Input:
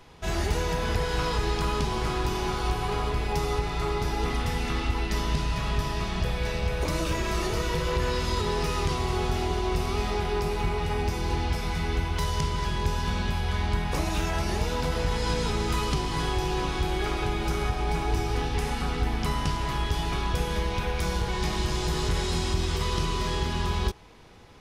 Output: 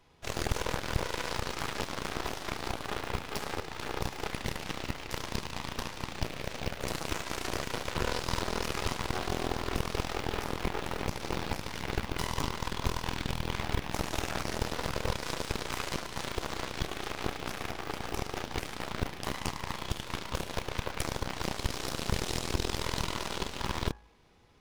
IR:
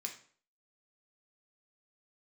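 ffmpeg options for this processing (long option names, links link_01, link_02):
-af "acrusher=bits=8:mode=log:mix=0:aa=0.000001,bandreject=frequency=55.59:width_type=h:width=4,bandreject=frequency=111.18:width_type=h:width=4,bandreject=frequency=166.77:width_type=h:width=4,bandreject=frequency=222.36:width_type=h:width=4,bandreject=frequency=277.95:width_type=h:width=4,bandreject=frequency=333.54:width_type=h:width=4,bandreject=frequency=389.13:width_type=h:width=4,bandreject=frequency=444.72:width_type=h:width=4,bandreject=frequency=500.31:width_type=h:width=4,bandreject=frequency=555.9:width_type=h:width=4,bandreject=frequency=611.49:width_type=h:width=4,bandreject=frequency=667.08:width_type=h:width=4,bandreject=frequency=722.67:width_type=h:width=4,bandreject=frequency=778.26:width_type=h:width=4,bandreject=frequency=833.85:width_type=h:width=4,bandreject=frequency=889.44:width_type=h:width=4,bandreject=frequency=945.03:width_type=h:width=4,bandreject=frequency=1000.62:width_type=h:width=4,bandreject=frequency=1056.21:width_type=h:width=4,bandreject=frequency=1111.8:width_type=h:width=4,bandreject=frequency=1167.39:width_type=h:width=4,bandreject=frequency=1222.98:width_type=h:width=4,bandreject=frequency=1278.57:width_type=h:width=4,bandreject=frequency=1334.16:width_type=h:width=4,bandreject=frequency=1389.75:width_type=h:width=4,bandreject=frequency=1445.34:width_type=h:width=4,bandreject=frequency=1500.93:width_type=h:width=4,bandreject=frequency=1556.52:width_type=h:width=4,bandreject=frequency=1612.11:width_type=h:width=4,bandreject=frequency=1667.7:width_type=h:width=4,bandreject=frequency=1723.29:width_type=h:width=4,bandreject=frequency=1778.88:width_type=h:width=4,aeval=exprs='0.211*(cos(1*acos(clip(val(0)/0.211,-1,1)))-cos(1*PI/2))+0.0668*(cos(4*acos(clip(val(0)/0.211,-1,1)))-cos(4*PI/2))+0.0473*(cos(7*acos(clip(val(0)/0.211,-1,1)))-cos(7*PI/2))':channel_layout=same,volume=-6dB"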